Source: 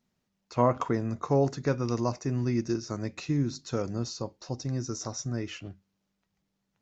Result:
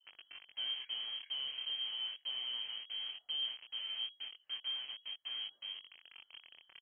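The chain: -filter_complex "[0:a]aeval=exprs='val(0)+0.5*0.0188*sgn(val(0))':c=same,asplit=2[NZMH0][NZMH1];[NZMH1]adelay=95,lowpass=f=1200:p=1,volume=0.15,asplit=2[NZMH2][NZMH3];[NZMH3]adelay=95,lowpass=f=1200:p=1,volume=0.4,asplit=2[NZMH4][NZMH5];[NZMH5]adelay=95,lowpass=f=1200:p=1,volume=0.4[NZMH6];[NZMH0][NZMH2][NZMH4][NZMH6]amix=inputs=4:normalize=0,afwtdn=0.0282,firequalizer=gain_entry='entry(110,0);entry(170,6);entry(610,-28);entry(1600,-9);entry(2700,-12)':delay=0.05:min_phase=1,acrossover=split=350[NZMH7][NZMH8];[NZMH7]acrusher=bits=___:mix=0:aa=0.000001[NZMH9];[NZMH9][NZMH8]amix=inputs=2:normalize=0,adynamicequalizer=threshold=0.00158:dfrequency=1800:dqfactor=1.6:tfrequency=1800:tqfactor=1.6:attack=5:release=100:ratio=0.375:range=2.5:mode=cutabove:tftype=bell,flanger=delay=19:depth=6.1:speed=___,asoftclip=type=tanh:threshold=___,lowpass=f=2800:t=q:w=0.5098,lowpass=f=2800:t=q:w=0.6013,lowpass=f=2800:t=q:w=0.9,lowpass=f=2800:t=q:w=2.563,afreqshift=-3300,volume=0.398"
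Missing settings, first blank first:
5, 0.38, 0.0708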